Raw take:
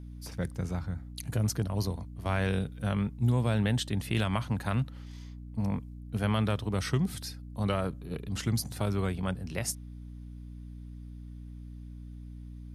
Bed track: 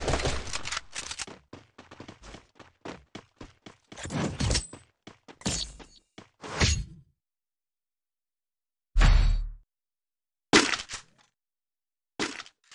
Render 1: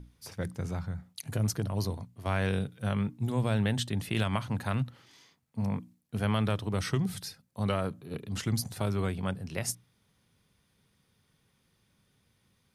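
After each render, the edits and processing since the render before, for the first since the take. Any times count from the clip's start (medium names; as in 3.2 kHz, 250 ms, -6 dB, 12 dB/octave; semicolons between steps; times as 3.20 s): hum notches 60/120/180/240/300 Hz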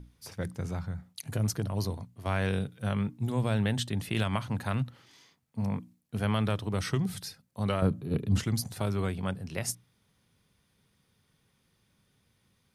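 7.82–8.44 s: bass shelf 410 Hz +11.5 dB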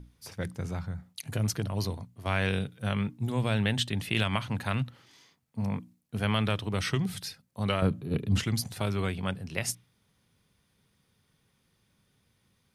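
dynamic bell 2.7 kHz, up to +7 dB, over -51 dBFS, Q 1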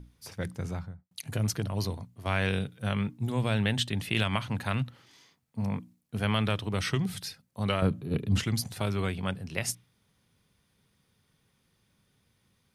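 0.69–1.11 s: studio fade out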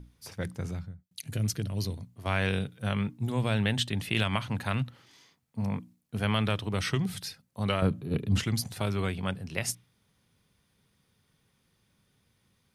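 0.71–2.07 s: peaking EQ 920 Hz -10.5 dB 1.5 oct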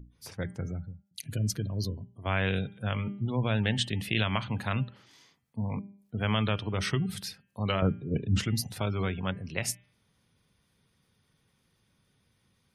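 spectral gate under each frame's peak -30 dB strong; de-hum 199.8 Hz, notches 16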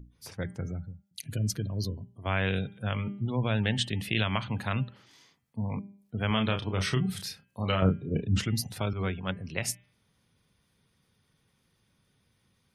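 6.27–8.23 s: doubling 32 ms -6.5 dB; 8.93–9.39 s: three bands expanded up and down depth 100%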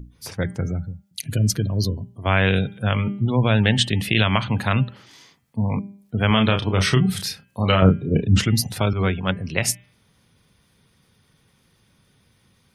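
trim +10 dB; peak limiter -3 dBFS, peak gain reduction 2 dB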